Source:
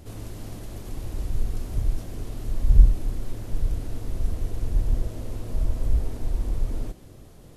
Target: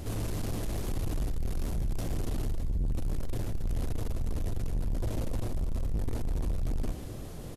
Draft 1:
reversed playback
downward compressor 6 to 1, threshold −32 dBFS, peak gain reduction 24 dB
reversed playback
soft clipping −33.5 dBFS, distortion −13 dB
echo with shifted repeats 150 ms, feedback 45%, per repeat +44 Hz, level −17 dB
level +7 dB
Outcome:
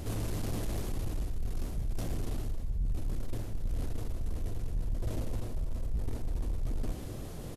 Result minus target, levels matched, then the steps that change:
downward compressor: peak gain reduction +8.5 dB
change: downward compressor 6 to 1, threshold −22 dBFS, peak gain reduction 15.5 dB

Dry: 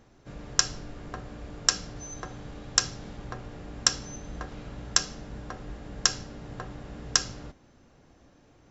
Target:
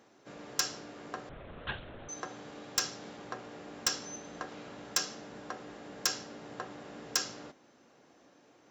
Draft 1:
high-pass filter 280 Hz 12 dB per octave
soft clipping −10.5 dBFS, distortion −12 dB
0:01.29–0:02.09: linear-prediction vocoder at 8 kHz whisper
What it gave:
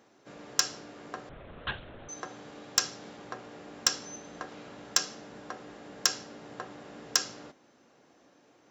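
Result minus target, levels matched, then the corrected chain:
soft clipping: distortion −8 dB
high-pass filter 280 Hz 12 dB per octave
soft clipping −20 dBFS, distortion −3 dB
0:01.29–0:02.09: linear-prediction vocoder at 8 kHz whisper

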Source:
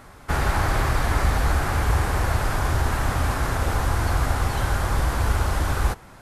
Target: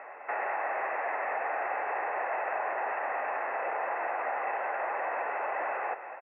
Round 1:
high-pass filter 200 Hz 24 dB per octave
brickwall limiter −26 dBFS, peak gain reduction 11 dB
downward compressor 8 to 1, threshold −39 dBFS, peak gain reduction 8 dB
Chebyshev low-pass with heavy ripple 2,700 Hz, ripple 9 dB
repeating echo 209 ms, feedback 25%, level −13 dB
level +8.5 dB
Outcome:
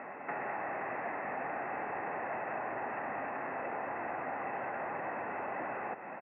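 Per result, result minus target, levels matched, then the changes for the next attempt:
250 Hz band +13.5 dB; downward compressor: peak gain reduction +5.5 dB
change: high-pass filter 460 Hz 24 dB per octave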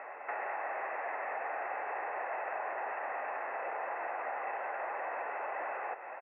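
downward compressor: peak gain reduction +5.5 dB
change: downward compressor 8 to 1, threshold −32.5 dBFS, peak gain reduction 2.5 dB

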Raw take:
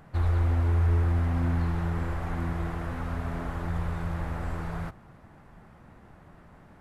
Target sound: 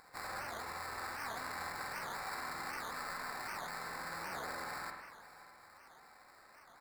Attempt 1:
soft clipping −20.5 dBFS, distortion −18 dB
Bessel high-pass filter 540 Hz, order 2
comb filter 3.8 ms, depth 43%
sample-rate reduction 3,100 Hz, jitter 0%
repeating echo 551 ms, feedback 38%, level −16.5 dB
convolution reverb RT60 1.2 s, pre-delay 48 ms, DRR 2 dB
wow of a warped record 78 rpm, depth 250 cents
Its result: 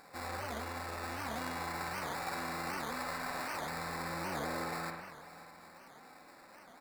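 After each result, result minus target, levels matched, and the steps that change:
soft clipping: distortion +15 dB; 500 Hz band +3.5 dB
change: soft clipping −11.5 dBFS, distortion −33 dB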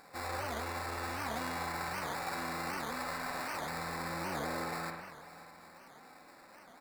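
500 Hz band +3.5 dB
change: Bessel high-pass filter 1,300 Hz, order 2

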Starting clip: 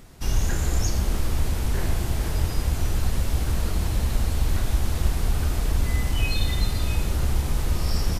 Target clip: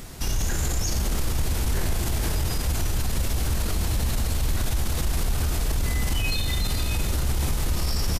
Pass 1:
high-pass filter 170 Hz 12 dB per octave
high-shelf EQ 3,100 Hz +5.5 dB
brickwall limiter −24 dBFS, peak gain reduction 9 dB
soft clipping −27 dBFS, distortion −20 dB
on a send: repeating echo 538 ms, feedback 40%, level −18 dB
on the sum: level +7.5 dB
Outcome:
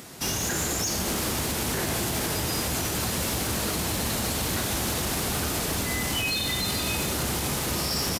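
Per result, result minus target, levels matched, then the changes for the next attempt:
soft clipping: distortion +20 dB; 125 Hz band −6.5 dB
change: soft clipping −15.5 dBFS, distortion −40 dB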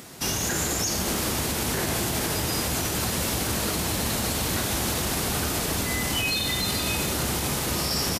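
125 Hz band −6.5 dB
remove: high-pass filter 170 Hz 12 dB per octave

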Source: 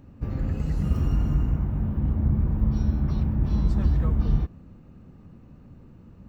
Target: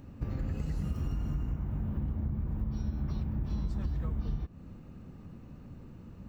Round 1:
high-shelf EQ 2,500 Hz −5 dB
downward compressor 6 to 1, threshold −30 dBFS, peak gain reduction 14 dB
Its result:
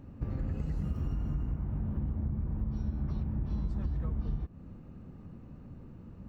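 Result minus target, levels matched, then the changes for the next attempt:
4,000 Hz band −6.5 dB
change: high-shelf EQ 2,500 Hz +4.5 dB

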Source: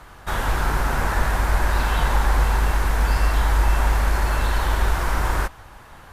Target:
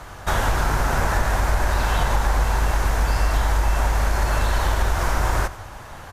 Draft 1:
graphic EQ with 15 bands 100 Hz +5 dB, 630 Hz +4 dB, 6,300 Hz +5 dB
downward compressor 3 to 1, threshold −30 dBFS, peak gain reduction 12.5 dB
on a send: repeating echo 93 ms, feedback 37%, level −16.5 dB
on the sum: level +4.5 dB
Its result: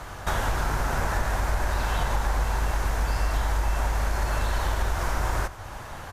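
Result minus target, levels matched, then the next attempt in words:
downward compressor: peak gain reduction +5.5 dB
graphic EQ with 15 bands 100 Hz +5 dB, 630 Hz +4 dB, 6,300 Hz +5 dB
downward compressor 3 to 1, threshold −22 dBFS, peak gain reduction 7.5 dB
on a send: repeating echo 93 ms, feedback 37%, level −16.5 dB
on the sum: level +4.5 dB

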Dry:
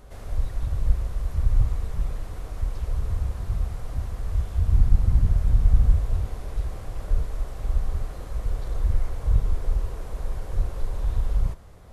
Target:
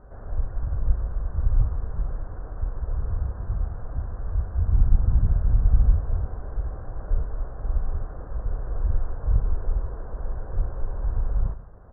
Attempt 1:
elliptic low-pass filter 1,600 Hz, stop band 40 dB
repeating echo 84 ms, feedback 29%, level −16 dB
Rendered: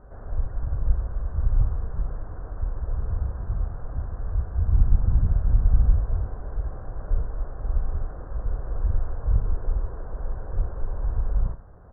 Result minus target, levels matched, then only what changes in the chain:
echo 54 ms early
change: repeating echo 138 ms, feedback 29%, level −16 dB

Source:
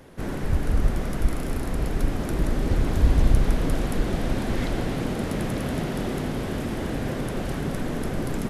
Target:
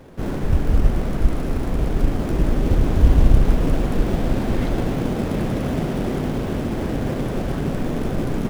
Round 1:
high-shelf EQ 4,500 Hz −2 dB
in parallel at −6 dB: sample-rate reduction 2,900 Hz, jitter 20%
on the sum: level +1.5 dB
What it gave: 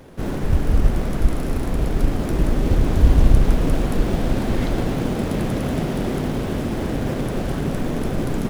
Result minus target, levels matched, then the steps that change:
8,000 Hz band +3.5 dB
change: high-shelf EQ 4,500 Hz −11 dB

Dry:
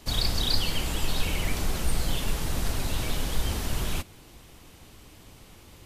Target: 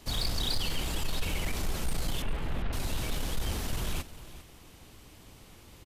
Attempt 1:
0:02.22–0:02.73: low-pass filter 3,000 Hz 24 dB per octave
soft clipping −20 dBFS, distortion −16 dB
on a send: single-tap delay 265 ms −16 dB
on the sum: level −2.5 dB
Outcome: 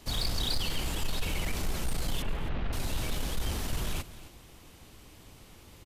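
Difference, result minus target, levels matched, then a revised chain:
echo 135 ms early
0:02.22–0:02.73: low-pass filter 3,000 Hz 24 dB per octave
soft clipping −20 dBFS, distortion −16 dB
on a send: single-tap delay 400 ms −16 dB
on the sum: level −2.5 dB

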